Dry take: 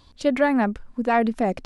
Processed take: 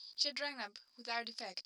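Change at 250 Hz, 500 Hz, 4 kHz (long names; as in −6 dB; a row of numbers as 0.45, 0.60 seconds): −32.0, −24.5, +4.0 decibels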